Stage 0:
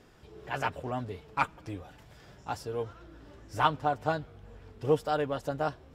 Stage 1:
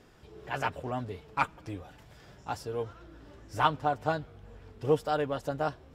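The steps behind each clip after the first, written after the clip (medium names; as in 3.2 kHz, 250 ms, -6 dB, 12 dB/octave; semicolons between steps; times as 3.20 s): no audible change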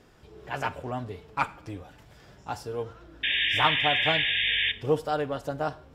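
painted sound noise, 3.23–4.72 s, 1.6–3.7 kHz -27 dBFS; Schroeder reverb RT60 0.45 s, combs from 33 ms, DRR 15.5 dB; trim +1 dB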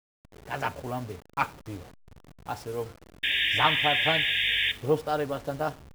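send-on-delta sampling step -42 dBFS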